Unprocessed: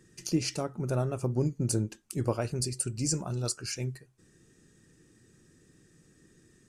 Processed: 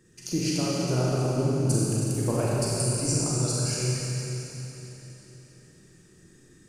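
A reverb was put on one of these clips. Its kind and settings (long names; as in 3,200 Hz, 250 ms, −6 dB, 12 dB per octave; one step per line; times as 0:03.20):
four-comb reverb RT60 3.6 s, combs from 31 ms, DRR −6.5 dB
level −1.5 dB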